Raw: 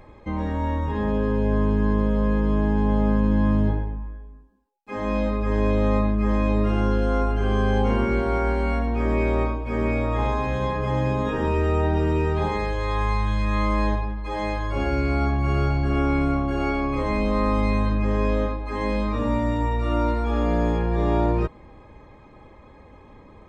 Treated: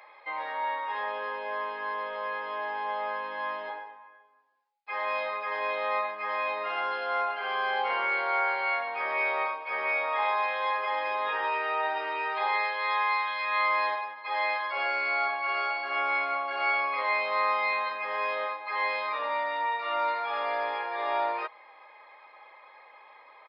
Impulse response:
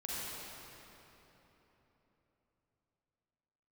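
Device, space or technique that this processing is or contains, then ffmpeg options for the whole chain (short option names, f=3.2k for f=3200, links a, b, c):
musical greeting card: -af "aresample=11025,aresample=44100,highpass=f=700:w=0.5412,highpass=f=700:w=1.3066,equalizer=f=2.1k:t=o:w=0.34:g=6,volume=1.5dB"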